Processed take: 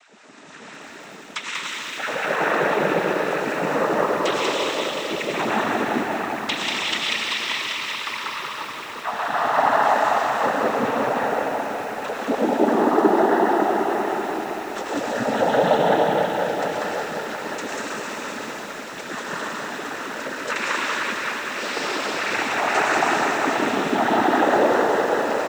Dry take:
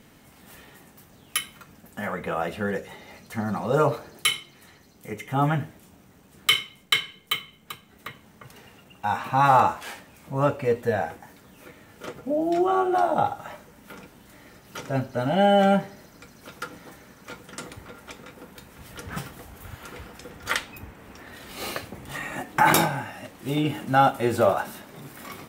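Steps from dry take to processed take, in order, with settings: compression 3:1, threshold -30 dBFS, peak gain reduction 12.5 dB; LFO high-pass sine 6 Hz 260–1600 Hz; on a send: delay 191 ms -3.5 dB; on the sum: algorithmic reverb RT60 4.9 s, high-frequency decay 0.95×, pre-delay 60 ms, DRR -6.5 dB; noise-vocoded speech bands 12; bit-crushed delay 191 ms, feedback 80%, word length 7-bit, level -10.5 dB; trim +2.5 dB

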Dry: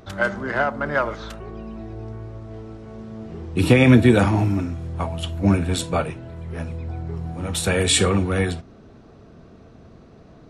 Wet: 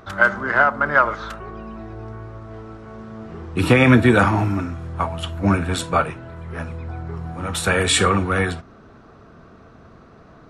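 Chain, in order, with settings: peaking EQ 1.3 kHz +10.5 dB 1.2 oct; trim -1 dB

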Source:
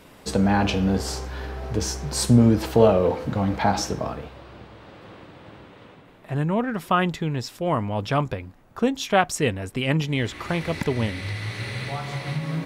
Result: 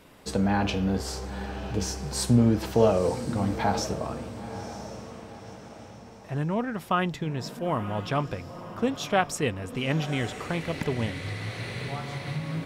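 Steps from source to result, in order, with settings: echo that smears into a reverb 976 ms, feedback 44%, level -12 dB; trim -4.5 dB

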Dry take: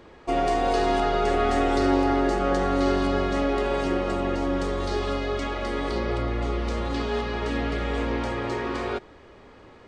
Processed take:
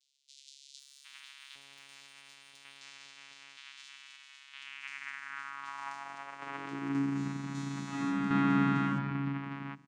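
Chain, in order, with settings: elliptic band-stop 180–1300 Hz; treble shelf 4.2 kHz -5.5 dB; vocoder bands 4, saw 139 Hz; high-pass sweep 3.7 kHz -> 210 Hz, 3.71–6.52 s; 0.79–2.81 s: valve stage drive 40 dB, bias 0.3; 7.12–8.07 s: reverb throw, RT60 1.5 s, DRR -8 dB; tremolo saw down 0.53 Hz, depth 50%; bands offset in time highs, lows 760 ms, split 3.9 kHz; trim +3.5 dB

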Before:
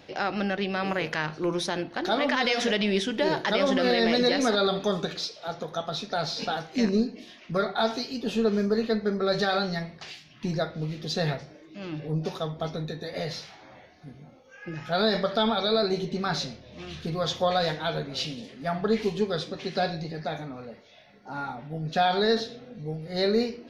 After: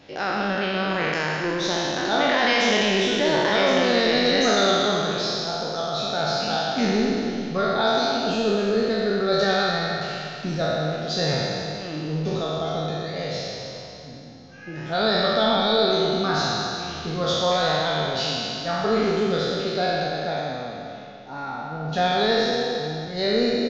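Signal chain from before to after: spectral sustain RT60 2.69 s; resampled via 16 kHz; Schroeder reverb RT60 1.6 s, combs from 26 ms, DRR 7.5 dB; trim -1 dB

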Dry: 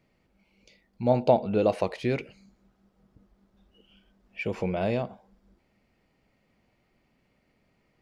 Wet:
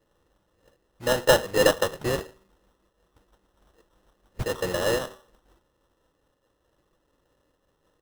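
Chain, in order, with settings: local Wiener filter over 15 samples; static phaser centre 1.1 kHz, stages 8; comb 3.7 ms, depth 42%; de-hum 382.5 Hz, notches 30; modulation noise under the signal 15 dB; tilt EQ +1.5 dB/octave; sample-rate reducer 2.3 kHz, jitter 0%; random flutter of the level, depth 50%; trim +8 dB

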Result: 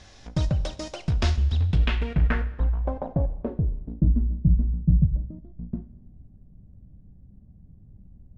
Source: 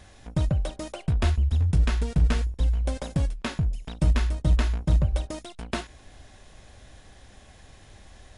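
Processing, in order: low-pass sweep 5.5 kHz -> 180 Hz, 1.36–4.35 s; Schroeder reverb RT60 1.2 s, combs from 30 ms, DRR 15 dB

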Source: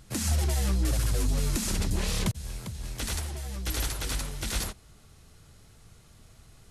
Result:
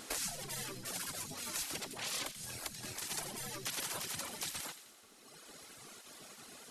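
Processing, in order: peak limiter -27 dBFS, peak gain reduction 10.5 dB; reverb removal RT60 1.6 s; compression, threshold -42 dBFS, peak gain reduction 9.5 dB; spectral gate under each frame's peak -15 dB weak; feedback echo behind a high-pass 86 ms, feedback 57%, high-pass 2 kHz, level -10.5 dB; trim +11 dB

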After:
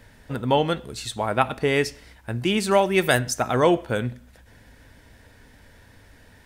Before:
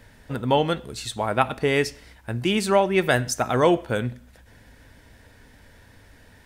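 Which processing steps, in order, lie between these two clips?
2.71–3.19 s: treble shelf 5 kHz +10.5 dB

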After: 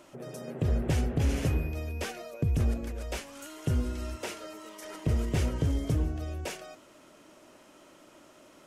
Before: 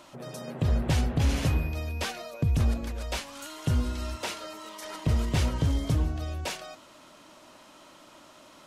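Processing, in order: fifteen-band graphic EQ 400 Hz +6 dB, 1 kHz -5 dB, 4 kHz -7 dB; trim -2.5 dB

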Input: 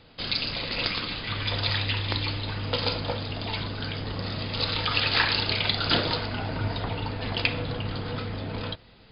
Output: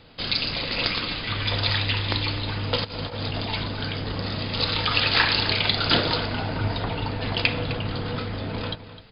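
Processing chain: 2.84–3.50 s: compressor with a negative ratio -33 dBFS, ratio -0.5; echo from a far wall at 44 m, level -13 dB; trim +3 dB

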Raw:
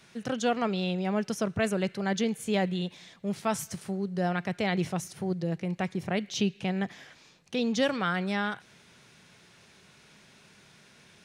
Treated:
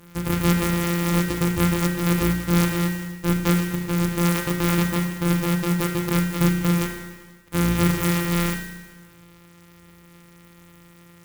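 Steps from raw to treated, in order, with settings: sorted samples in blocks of 256 samples; peaking EQ 690 Hz -12.5 dB 0.36 oct; spring tank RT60 1.2 s, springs 34 ms, chirp 45 ms, DRR 0.5 dB; in parallel at +1.5 dB: gain riding 0.5 s; on the sum: sampling jitter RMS 0.053 ms

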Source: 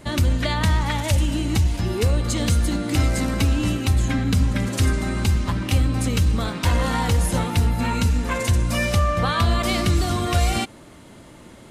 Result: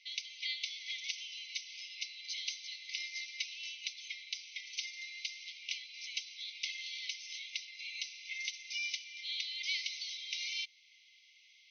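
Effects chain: dynamic bell 2.6 kHz, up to -4 dB, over -42 dBFS, Q 3.6; brick-wall FIR band-pass 2–6.3 kHz; trim -6.5 dB

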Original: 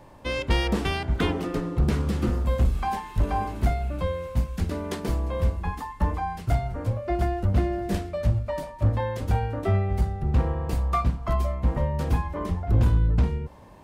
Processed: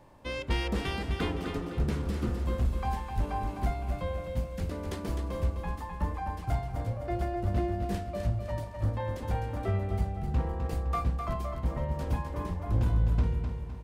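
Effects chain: feedback delay 256 ms, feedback 44%, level -6.5 dB; trim -7 dB

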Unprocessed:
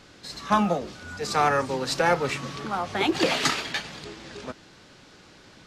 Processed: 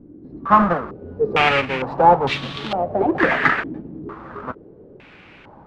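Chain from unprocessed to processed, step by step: square wave that keeps the level; step-sequenced low-pass 2.2 Hz 310–3500 Hz; trim -1 dB

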